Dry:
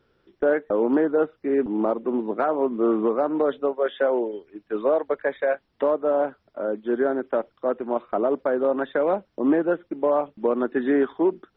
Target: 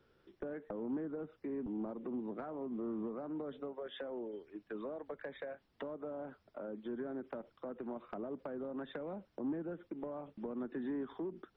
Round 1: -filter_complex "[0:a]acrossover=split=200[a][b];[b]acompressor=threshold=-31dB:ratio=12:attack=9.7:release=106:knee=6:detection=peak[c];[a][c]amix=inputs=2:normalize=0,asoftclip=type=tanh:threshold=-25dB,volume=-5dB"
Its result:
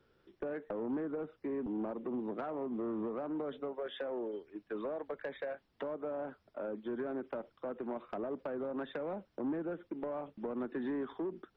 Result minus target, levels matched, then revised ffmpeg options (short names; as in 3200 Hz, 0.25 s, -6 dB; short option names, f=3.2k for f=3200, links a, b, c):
compressor: peak gain reduction -6.5 dB
-filter_complex "[0:a]acrossover=split=200[a][b];[b]acompressor=threshold=-38dB:ratio=12:attack=9.7:release=106:knee=6:detection=peak[c];[a][c]amix=inputs=2:normalize=0,asoftclip=type=tanh:threshold=-25dB,volume=-5dB"